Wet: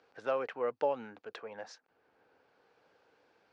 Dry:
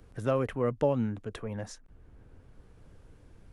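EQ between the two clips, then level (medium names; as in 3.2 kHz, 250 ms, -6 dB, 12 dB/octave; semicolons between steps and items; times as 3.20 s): cabinet simulation 480–5700 Hz, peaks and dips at 480 Hz +4 dB, 810 Hz +7 dB, 1.5 kHz +5 dB, 2.5 kHz +4 dB, 4.5 kHz +5 dB; -4.5 dB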